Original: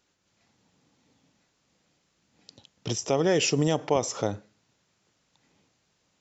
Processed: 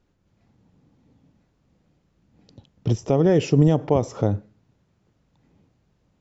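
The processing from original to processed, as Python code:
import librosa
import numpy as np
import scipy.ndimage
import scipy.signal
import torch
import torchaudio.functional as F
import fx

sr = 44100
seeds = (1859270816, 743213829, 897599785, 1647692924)

y = fx.tilt_eq(x, sr, slope=-4.0)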